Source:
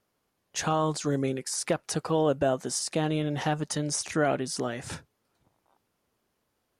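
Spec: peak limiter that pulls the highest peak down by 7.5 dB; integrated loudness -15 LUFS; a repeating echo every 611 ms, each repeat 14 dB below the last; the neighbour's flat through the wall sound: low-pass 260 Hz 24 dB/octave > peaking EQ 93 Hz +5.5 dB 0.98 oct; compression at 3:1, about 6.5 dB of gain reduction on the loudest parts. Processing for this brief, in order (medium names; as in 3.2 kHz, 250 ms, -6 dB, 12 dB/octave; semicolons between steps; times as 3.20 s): compression 3:1, threshold -29 dBFS; peak limiter -25.5 dBFS; low-pass 260 Hz 24 dB/octave; peaking EQ 93 Hz +5.5 dB 0.98 oct; feedback delay 611 ms, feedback 20%, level -14 dB; trim +26.5 dB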